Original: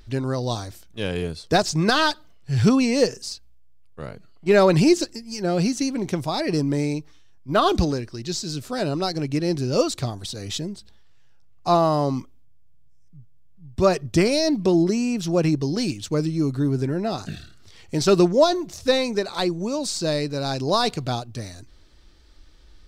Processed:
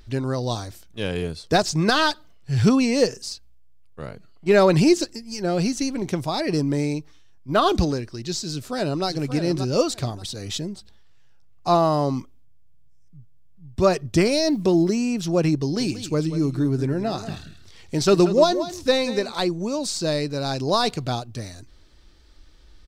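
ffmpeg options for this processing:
ffmpeg -i in.wav -filter_complex "[0:a]asettb=1/sr,asplit=3[link_01][link_02][link_03];[link_01]atrim=end=5.174[link_04];[link_02]atrim=start=5.17:end=6.02,asetpts=PTS-STARTPTS,afade=type=in:duration=0.004:curve=qsin,afade=type=out:start_time=0.846:duration=0.004:curve=qsin,asubboost=boost=10:cutoff=71[link_05];[link_03]atrim=start=6.016[link_06];[link_04][link_05]acrossfade=duration=0.004:curve1=hsin:curve2=qsin[link_07];[link_07][link_06]acrossfade=duration=0.004:curve1=qsin:curve2=hsin,asplit=2[link_08][link_09];[link_09]afade=type=in:start_time=8.51:duration=0.01,afade=type=out:start_time=9.06:duration=0.01,aecho=0:1:580|1160|1740:0.375837|0.0751675|0.0150335[link_10];[link_08][link_10]amix=inputs=2:normalize=0,asettb=1/sr,asplit=3[link_11][link_12][link_13];[link_11]atrim=end=14.224[link_14];[link_12]atrim=start=14.22:end=14.96,asetpts=PTS-STARTPTS,afade=type=in:duration=0.004:curve=qsin,afade=type=out:start_time=0.736:duration=0.004:curve=qsin,acrusher=bits=8:mix=0:aa=0.5[link_15];[link_13]atrim=start=14.956[link_16];[link_14][link_15]acrossfade=duration=0.004:curve1=hsin:curve2=qsin[link_17];[link_17][link_16]acrossfade=duration=0.004:curve1=qsin:curve2=hsin,asettb=1/sr,asplit=3[link_18][link_19][link_20];[link_18]atrim=end=15.614[link_21];[link_19]atrim=start=15.61:end=19.32,asetpts=PTS-STARTPTS,afade=type=in:duration=0.004:curve=qsin,afade=type=out:start_time=3.706:duration=0.004:curve=qsin,aecho=1:1:183:0.237,atrim=end_sample=163611[link_22];[link_20]atrim=start=19.316[link_23];[link_21][link_22]acrossfade=duration=0.004:curve1=hsin:curve2=qsin[link_24];[link_24][link_23]acrossfade=duration=0.004:curve1=qsin:curve2=hsin" out.wav

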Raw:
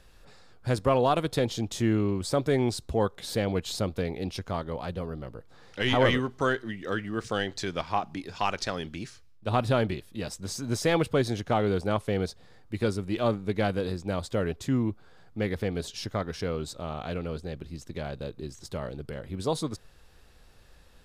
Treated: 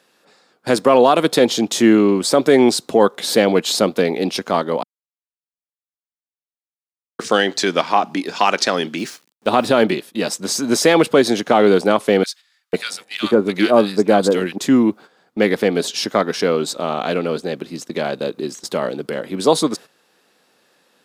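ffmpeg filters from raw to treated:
ffmpeg -i in.wav -filter_complex "[0:a]asettb=1/sr,asplit=3[link_01][link_02][link_03];[link_01]atrim=end=8.984[link_04];[link_02]atrim=start=8.98:end=9.83,asetpts=PTS-STARTPTS,afade=type=in:duration=0.004:curve=qsin,afade=type=out:start_time=0.846:duration=0.004:curve=qsin,aeval=exprs='val(0)*gte(abs(val(0)),0.00282)':channel_layout=same[link_05];[link_03]atrim=start=9.826[link_06];[link_04][link_05]acrossfade=duration=0.004:curve1=hsin:curve2=qsin[link_07];[link_07][link_06]acrossfade=duration=0.004:curve1=qsin:curve2=hsin,asettb=1/sr,asplit=3[link_08][link_09][link_10];[link_08]atrim=end=12.234[link_11];[link_09]atrim=start=12.23:end=14.58,asetpts=PTS-STARTPTS,afade=type=in:duration=0.004:curve=qsin,afade=type=out:start_time=2.346:duration=0.004:curve=qsin,acrossover=split=1500[link_12][link_13];[link_12]adelay=500[link_14];[link_14][link_13]amix=inputs=2:normalize=0,atrim=end_sample=103635[link_15];[link_10]atrim=start=14.576[link_16];[link_11][link_15]acrossfade=duration=0.004:curve1=hsin:curve2=qsin[link_17];[link_17][link_16]acrossfade=duration=0.004:curve1=qsin:curve2=hsin,asplit=3[link_18][link_19][link_20];[link_18]atrim=end=4.83,asetpts=PTS-STARTPTS,afade=type=out:start_time=4.826:duration=0.004:curve=hsin[link_21];[link_19]atrim=start=4.83:end=7.19,asetpts=PTS-STARTPTS,volume=0[link_22];[link_20]atrim=start=7.19,asetpts=PTS-STARTPTS,afade=type=in:duration=0.004:curve=hsin[link_23];[link_21][link_22][link_23]concat=n=3:v=0:a=1,highpass=frequency=210:width=0.5412,highpass=frequency=210:width=1.3066,agate=range=-12dB:threshold=-49dB:ratio=16:detection=peak,alimiter=level_in=16dB:limit=-1dB:release=50:level=0:latency=1,volume=-1dB" out.wav

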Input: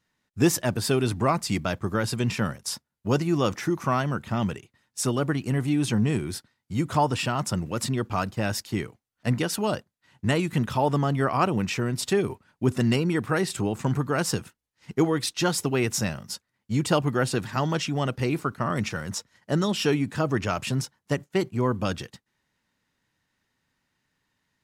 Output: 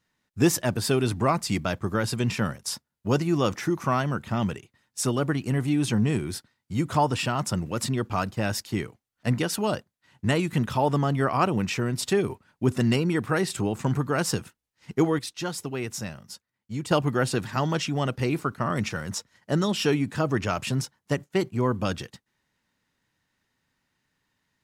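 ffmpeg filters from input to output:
ffmpeg -i in.wav -filter_complex "[0:a]asplit=3[link_01][link_02][link_03];[link_01]atrim=end=15.192[link_04];[link_02]atrim=start=15.188:end=16.912,asetpts=PTS-STARTPTS,volume=-7dB[link_05];[link_03]atrim=start=16.908[link_06];[link_04][link_05]acrossfade=duration=0.004:curve1=hsin:curve2=hsin[link_07];[link_07][link_06]acrossfade=duration=0.004:curve1=hsin:curve2=hsin" out.wav

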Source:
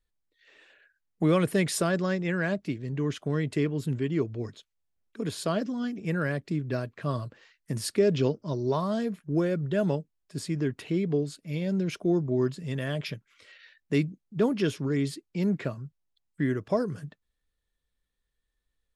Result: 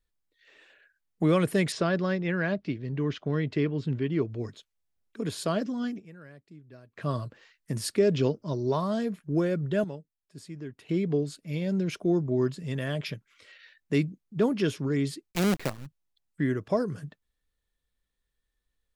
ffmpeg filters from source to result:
ffmpeg -i in.wav -filter_complex "[0:a]asettb=1/sr,asplit=3[link_01][link_02][link_03];[link_01]atrim=end=1.724[link_04];[link_02]atrim=start=1.72:end=4.3,asetpts=PTS-STARTPTS,afade=type=in:duration=0.004:curve=qsin,afade=type=out:start_time=2.576:duration=0.004:curve=qsin,lowpass=frequency=5100:width=0.5412,lowpass=frequency=5100:width=1.3066[link_05];[link_03]atrim=start=4.296[link_06];[link_04][link_05]acrossfade=duration=0.004:curve1=hsin:curve2=qsin[link_07];[link_07][link_06]acrossfade=duration=0.004:curve1=qsin:curve2=hsin,asplit=3[link_08][link_09][link_10];[link_08]afade=type=out:start_time=15.31:duration=0.02[link_11];[link_09]acrusher=bits=5:dc=4:mix=0:aa=0.000001,afade=type=in:start_time=15.31:duration=0.02,afade=type=out:start_time=15.85:duration=0.02[link_12];[link_10]afade=type=in:start_time=15.85:duration=0.02[link_13];[link_11][link_12][link_13]amix=inputs=3:normalize=0,asplit=5[link_14][link_15][link_16][link_17][link_18];[link_14]atrim=end=6.29,asetpts=PTS-STARTPTS,afade=type=out:start_time=5.97:duration=0.32:curve=exp:silence=0.1[link_19];[link_15]atrim=start=6.29:end=6.66,asetpts=PTS-STARTPTS,volume=-20dB[link_20];[link_16]atrim=start=6.66:end=9.842,asetpts=PTS-STARTPTS,afade=type=in:duration=0.32:curve=exp:silence=0.1[link_21];[link_17]atrim=start=9.838:end=10.892,asetpts=PTS-STARTPTS,volume=-11dB[link_22];[link_18]atrim=start=10.888[link_23];[link_19][link_20][link_21]concat=n=3:v=0:a=1[link_24];[link_24][link_22]acrossfade=duration=0.004:curve1=hsin:curve2=hsin[link_25];[link_25][link_23]acrossfade=duration=0.004:curve1=hsin:curve2=hsin" out.wav

